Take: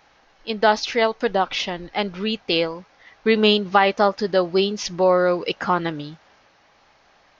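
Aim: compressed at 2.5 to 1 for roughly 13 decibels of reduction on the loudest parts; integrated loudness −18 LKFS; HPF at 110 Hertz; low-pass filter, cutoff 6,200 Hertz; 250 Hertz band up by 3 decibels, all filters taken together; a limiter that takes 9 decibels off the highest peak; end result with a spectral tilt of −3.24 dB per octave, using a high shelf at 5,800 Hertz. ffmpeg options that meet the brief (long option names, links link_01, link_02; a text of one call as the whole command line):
ffmpeg -i in.wav -af "highpass=110,lowpass=6200,equalizer=frequency=250:width_type=o:gain=4.5,highshelf=frequency=5800:gain=4,acompressor=threshold=-31dB:ratio=2.5,volume=15.5dB,alimiter=limit=-6dB:level=0:latency=1" out.wav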